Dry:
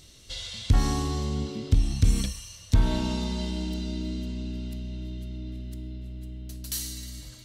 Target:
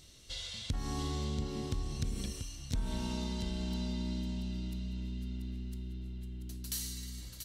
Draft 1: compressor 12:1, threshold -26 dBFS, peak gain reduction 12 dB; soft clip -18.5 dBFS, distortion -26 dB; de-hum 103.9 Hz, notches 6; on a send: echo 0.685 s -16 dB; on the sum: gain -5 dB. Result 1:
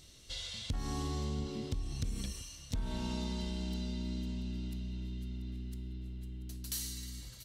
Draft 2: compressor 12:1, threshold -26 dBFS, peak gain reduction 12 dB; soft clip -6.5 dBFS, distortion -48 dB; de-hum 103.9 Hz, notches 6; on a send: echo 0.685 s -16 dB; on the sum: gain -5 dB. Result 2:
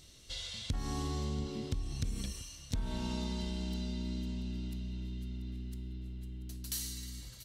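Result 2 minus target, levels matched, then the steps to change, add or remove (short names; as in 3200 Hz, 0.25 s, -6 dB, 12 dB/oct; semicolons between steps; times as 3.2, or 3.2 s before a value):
echo-to-direct -8.5 dB
change: echo 0.685 s -7.5 dB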